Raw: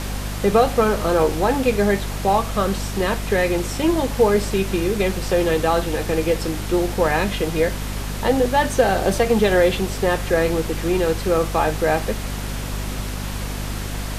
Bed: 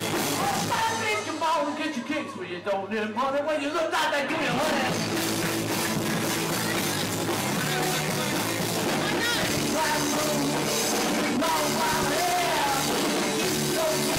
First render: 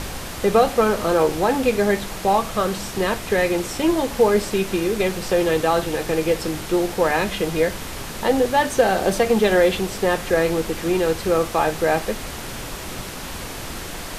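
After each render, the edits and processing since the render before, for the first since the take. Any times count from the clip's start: de-hum 50 Hz, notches 5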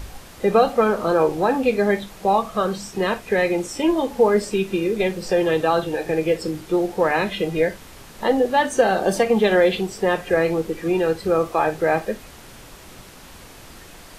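noise print and reduce 11 dB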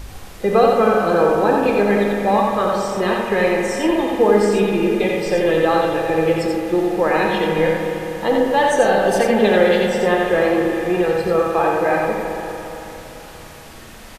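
on a send: echo 87 ms -3.5 dB; on the sum: spring tank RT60 3.7 s, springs 39/56 ms, chirp 55 ms, DRR 2 dB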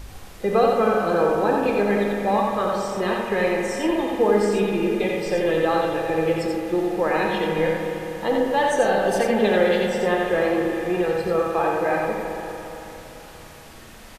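gain -4.5 dB

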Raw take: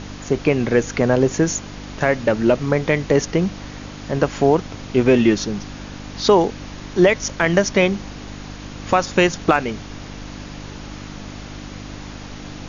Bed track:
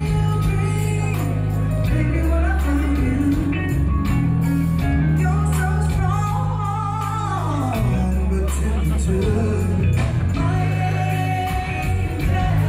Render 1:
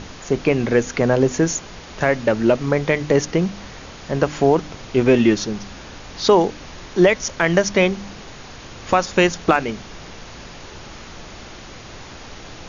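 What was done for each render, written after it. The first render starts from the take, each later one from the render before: de-hum 50 Hz, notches 6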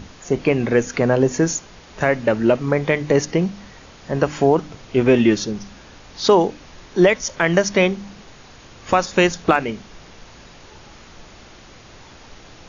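noise print and reduce 6 dB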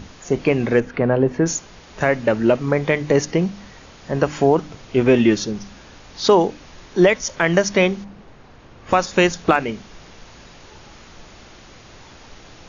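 0.8–1.46 air absorption 350 m; 8.03–8.9 LPF 1000 Hz -> 1600 Hz 6 dB/oct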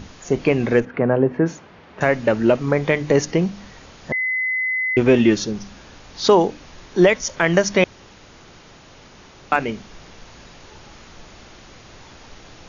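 0.85–2.01 BPF 100–2400 Hz; 4.12–4.97 bleep 2030 Hz -19 dBFS; 7.84–9.52 room tone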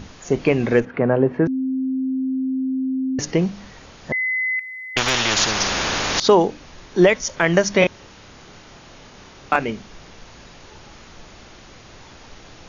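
1.47–3.19 bleep 262 Hz -19.5 dBFS; 4.59–6.2 spectral compressor 10:1; 7.79–9.56 doubler 29 ms -3 dB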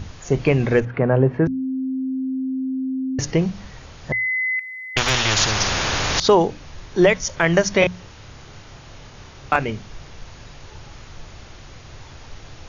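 resonant low shelf 160 Hz +7 dB, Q 1.5; notches 60/120/180 Hz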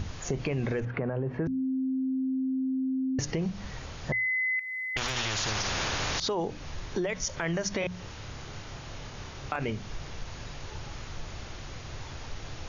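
limiter -15 dBFS, peak gain reduction 11.5 dB; compressor 2.5:1, threshold -30 dBFS, peak gain reduction 7.5 dB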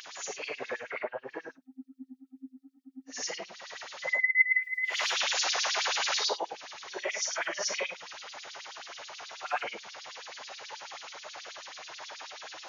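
phase scrambler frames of 0.2 s; LFO high-pass sine 9.3 Hz 590–4700 Hz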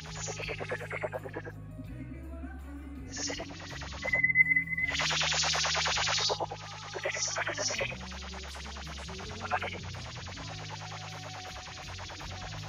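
add bed track -25 dB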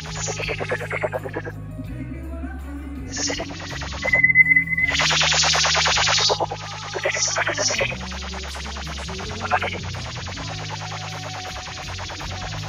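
gain +11 dB; limiter -3 dBFS, peak gain reduction 2.5 dB

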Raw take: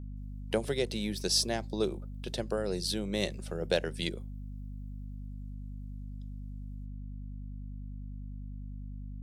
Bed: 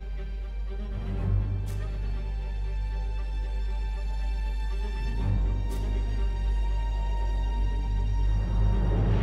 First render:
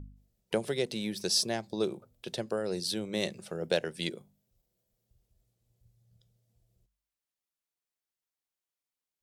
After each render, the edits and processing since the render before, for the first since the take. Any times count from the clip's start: de-hum 50 Hz, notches 5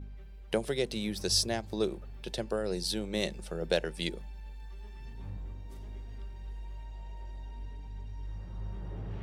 add bed -15 dB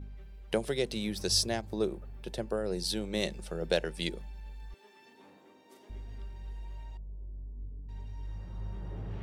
1.61–2.79 bell 4300 Hz -6.5 dB 2.1 oct; 4.74–5.9 HPF 270 Hz 24 dB/oct; 6.97–7.89 Gaussian blur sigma 19 samples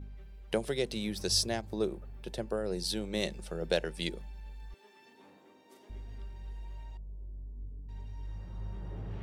gain -1 dB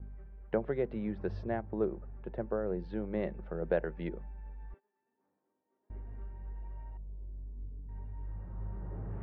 LPF 1700 Hz 24 dB/oct; gate -50 dBFS, range -22 dB

